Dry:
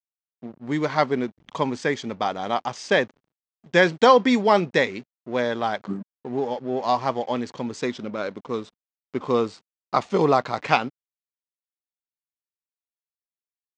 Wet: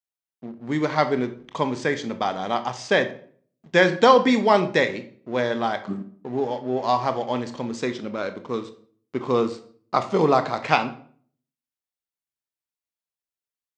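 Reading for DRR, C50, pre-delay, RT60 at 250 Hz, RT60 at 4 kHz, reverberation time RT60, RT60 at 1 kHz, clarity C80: 9.0 dB, 13.5 dB, 20 ms, 0.60 s, 0.40 s, 0.50 s, 0.50 s, 17.5 dB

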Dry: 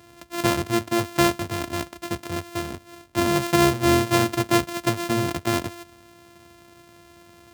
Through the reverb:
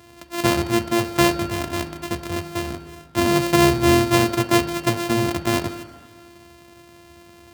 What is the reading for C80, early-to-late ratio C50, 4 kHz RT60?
10.5 dB, 9.5 dB, 1.6 s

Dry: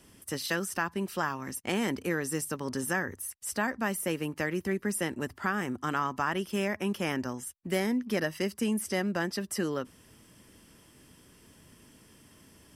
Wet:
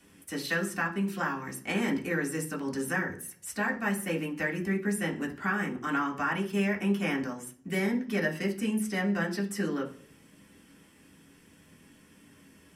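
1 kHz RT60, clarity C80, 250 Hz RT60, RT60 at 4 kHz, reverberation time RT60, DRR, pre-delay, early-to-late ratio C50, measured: 0.40 s, 17.5 dB, 0.80 s, 0.55 s, 0.50 s, −2.5 dB, 3 ms, 12.5 dB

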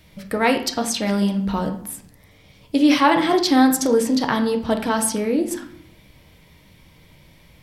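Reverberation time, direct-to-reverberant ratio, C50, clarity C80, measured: 0.60 s, 4.0 dB, 9.5 dB, 14.0 dB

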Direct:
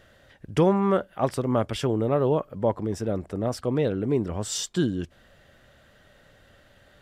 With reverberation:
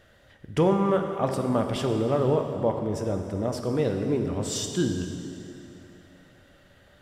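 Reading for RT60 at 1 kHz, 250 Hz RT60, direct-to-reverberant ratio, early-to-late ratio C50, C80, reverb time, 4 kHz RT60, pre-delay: 2.8 s, 3.0 s, 4.0 dB, 5.5 dB, 6.0 dB, 2.9 s, 2.6 s, 3 ms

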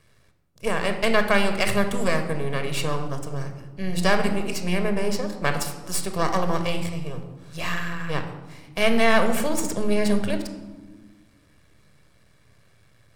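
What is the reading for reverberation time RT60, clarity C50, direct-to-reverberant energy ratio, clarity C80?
1.3 s, 8.5 dB, 6.5 dB, 10.5 dB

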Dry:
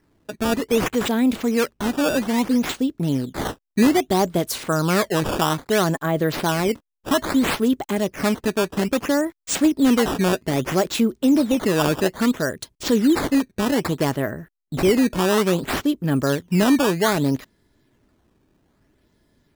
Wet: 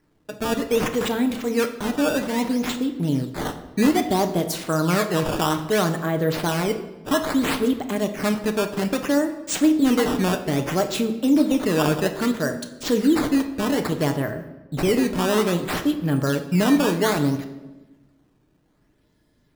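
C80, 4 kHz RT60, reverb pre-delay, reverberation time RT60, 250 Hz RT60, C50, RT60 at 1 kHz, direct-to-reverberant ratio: 13.0 dB, 0.85 s, 7 ms, 1.1 s, 1.4 s, 10.5 dB, 1.0 s, 6.0 dB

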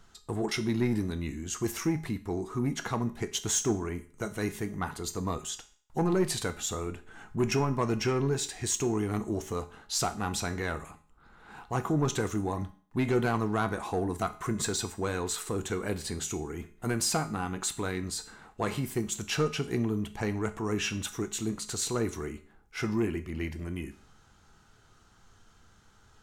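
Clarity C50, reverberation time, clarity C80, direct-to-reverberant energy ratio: 15.5 dB, 0.45 s, 19.0 dB, 9.5 dB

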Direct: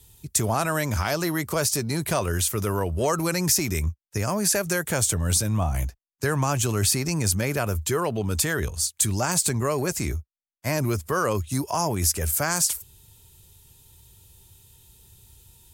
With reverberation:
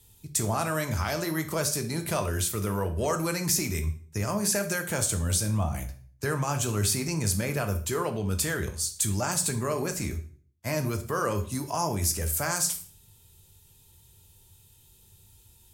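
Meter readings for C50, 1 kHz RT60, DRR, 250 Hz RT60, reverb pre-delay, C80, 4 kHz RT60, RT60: 12.5 dB, 0.45 s, 5.5 dB, 0.55 s, 3 ms, 17.0 dB, 0.40 s, 0.50 s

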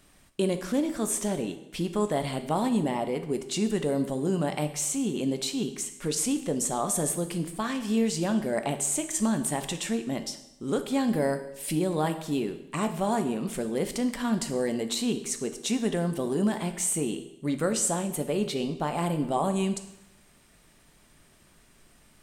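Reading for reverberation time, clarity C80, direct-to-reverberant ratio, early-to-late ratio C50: 0.85 s, 13.5 dB, 7.5 dB, 11.0 dB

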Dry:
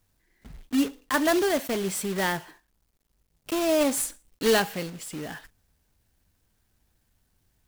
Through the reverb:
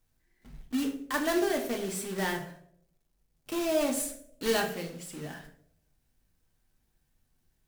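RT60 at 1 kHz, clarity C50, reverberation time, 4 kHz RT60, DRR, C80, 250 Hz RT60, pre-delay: 0.55 s, 9.5 dB, 0.70 s, 0.40 s, 2.5 dB, 12.5 dB, 0.75 s, 3 ms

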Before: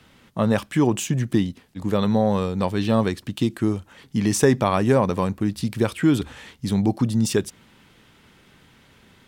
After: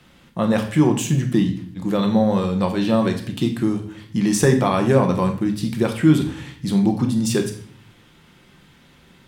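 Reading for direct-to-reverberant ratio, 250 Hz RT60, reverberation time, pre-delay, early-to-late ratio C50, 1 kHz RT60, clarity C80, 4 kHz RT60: 4.0 dB, 0.80 s, 0.55 s, 5 ms, 9.5 dB, 0.50 s, 12.5 dB, 0.50 s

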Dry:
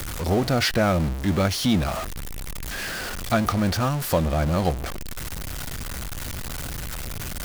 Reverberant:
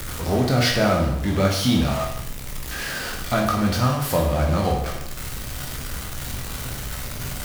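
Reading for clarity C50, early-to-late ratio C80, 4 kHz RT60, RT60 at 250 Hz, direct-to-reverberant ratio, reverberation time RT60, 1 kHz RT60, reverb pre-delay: 4.5 dB, 7.5 dB, 0.75 s, 0.75 s, −0.5 dB, 0.75 s, 0.70 s, 15 ms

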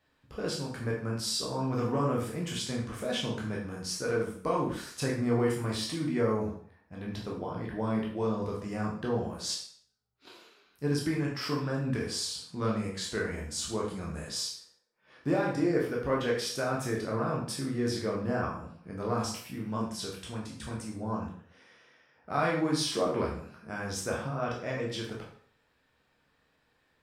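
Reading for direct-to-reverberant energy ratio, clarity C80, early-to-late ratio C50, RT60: −3.5 dB, 8.0 dB, 4.5 dB, 0.55 s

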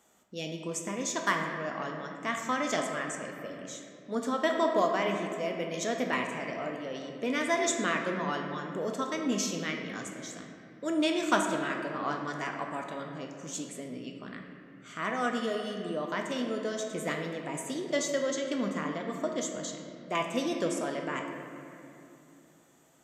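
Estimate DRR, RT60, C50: 2.0 dB, 2.7 s, 4.0 dB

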